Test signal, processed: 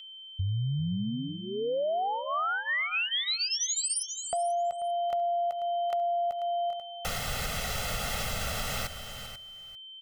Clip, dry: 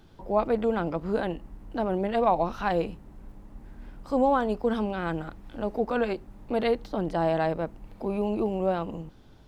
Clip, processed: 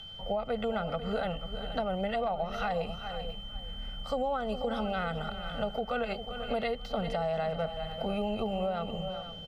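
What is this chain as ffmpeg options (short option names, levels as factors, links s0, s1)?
-filter_complex "[0:a]highshelf=f=4000:g=-7,aeval=exprs='val(0)+0.00501*sin(2*PI*3100*n/s)':c=same,acrossover=split=430[s0][s1];[s1]acompressor=threshold=0.0282:ratio=1.5[s2];[s0][s2]amix=inputs=2:normalize=0,tiltshelf=f=1100:g=-4,aecho=1:1:1.5:0.97,asplit=2[s3][s4];[s4]aecho=0:1:394:0.188[s5];[s3][s5]amix=inputs=2:normalize=0,alimiter=limit=0.0891:level=0:latency=1:release=379,asplit=2[s6][s7];[s7]aecho=0:1:489:0.211[s8];[s6][s8]amix=inputs=2:normalize=0,acompressor=threshold=0.0398:ratio=6,volume=1.12"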